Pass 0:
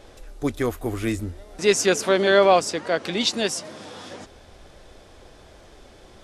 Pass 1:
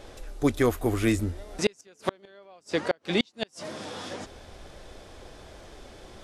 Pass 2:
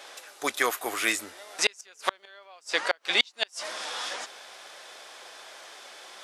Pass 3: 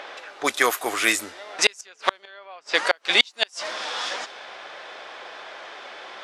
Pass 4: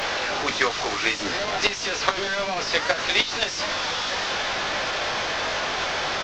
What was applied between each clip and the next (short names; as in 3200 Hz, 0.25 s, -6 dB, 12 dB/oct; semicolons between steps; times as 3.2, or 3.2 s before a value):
flipped gate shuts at -12 dBFS, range -37 dB; gain +1.5 dB
HPF 1000 Hz 12 dB/oct; gain +7.5 dB
low-pass opened by the level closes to 2300 Hz, open at -24.5 dBFS; in parallel at +1 dB: upward compressor, threshold -35 dBFS; on the sum: gain -1 dB
delta modulation 32 kbps, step -15.5 dBFS; doubler 20 ms -7 dB; transient shaper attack +6 dB, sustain -6 dB; gain -5.5 dB